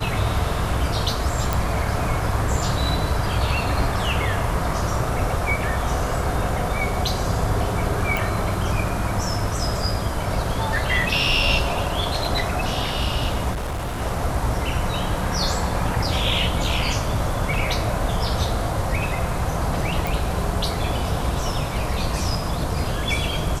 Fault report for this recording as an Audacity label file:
1.530000	1.530000	pop
8.170000	8.170000	pop
13.520000	14.020000	clipped -23.5 dBFS
20.070000	20.070000	pop

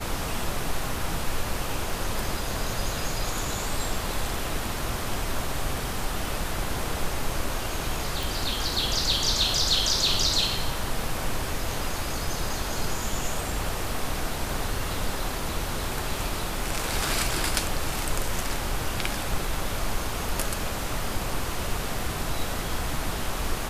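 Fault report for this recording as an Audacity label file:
8.230000	8.230000	pop

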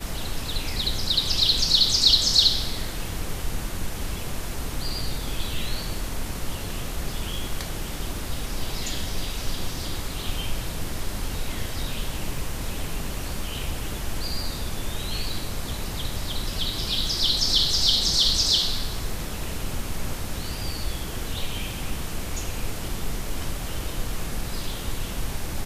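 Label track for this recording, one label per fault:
12.380000	12.380000	gap 2.7 ms

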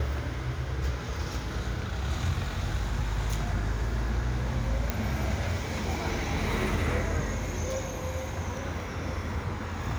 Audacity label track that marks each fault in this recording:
4.900000	4.900000	pop -13 dBFS

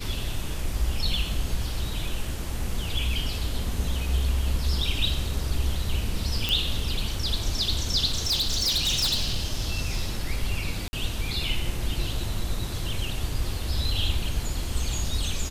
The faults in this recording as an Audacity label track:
6.490000	6.490000	pop
8.100000	10.270000	clipped -20.5 dBFS
10.880000	10.930000	gap 50 ms

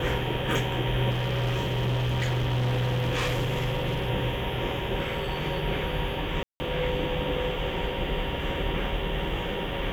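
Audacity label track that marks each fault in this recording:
1.100000	4.100000	clipped -23 dBFS
6.430000	6.600000	gap 0.17 s

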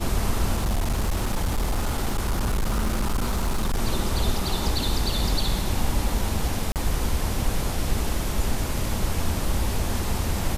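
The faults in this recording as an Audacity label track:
0.550000	3.790000	clipped -19.5 dBFS
6.720000	6.760000	gap 38 ms

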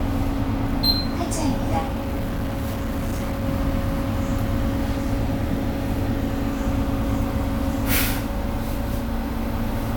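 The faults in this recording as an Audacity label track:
1.810000	3.450000	clipped -21.5 dBFS

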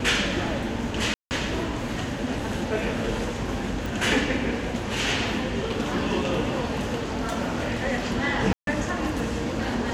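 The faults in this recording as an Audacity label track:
1.140000	1.310000	gap 0.169 s
3.860000	3.860000	pop
8.530000	8.670000	gap 0.142 s

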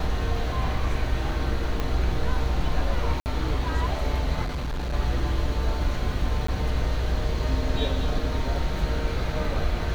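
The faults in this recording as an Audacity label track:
1.800000	1.800000	pop -14 dBFS
3.200000	3.260000	gap 59 ms
4.440000	4.940000	clipped -25.5 dBFS
6.470000	6.480000	gap 14 ms

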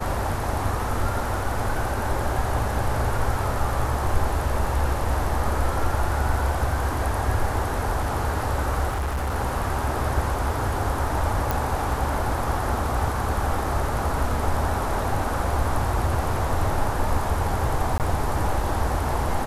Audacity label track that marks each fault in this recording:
8.890000	9.360000	clipped -22.5 dBFS
11.510000	11.510000	pop
17.980000	18.000000	gap 18 ms

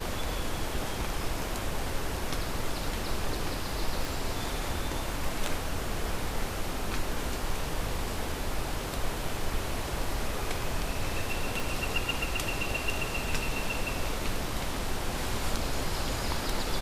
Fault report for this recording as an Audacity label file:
4.050000	4.050000	pop
11.600000	11.600000	pop

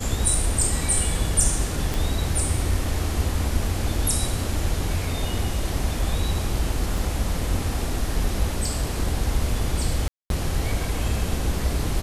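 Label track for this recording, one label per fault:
1.940000	1.940000	pop
6.980000	6.980000	gap 2.3 ms
10.080000	10.300000	gap 0.222 s

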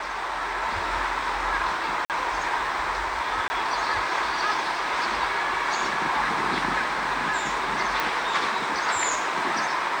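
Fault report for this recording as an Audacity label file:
2.050000	2.100000	gap 48 ms
3.480000	3.500000	gap 20 ms
8.000000	8.000000	pop

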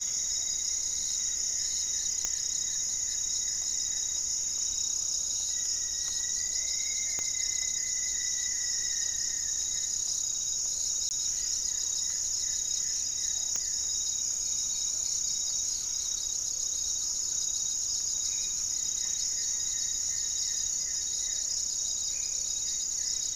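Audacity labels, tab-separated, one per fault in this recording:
2.250000	2.250000	pop -15 dBFS
7.190000	7.190000	pop -20 dBFS
11.090000	11.110000	gap 19 ms
13.560000	13.560000	pop -18 dBFS

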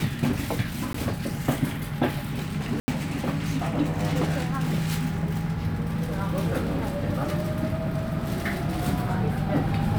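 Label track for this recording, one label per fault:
0.930000	0.940000	gap 14 ms
2.800000	2.880000	gap 80 ms

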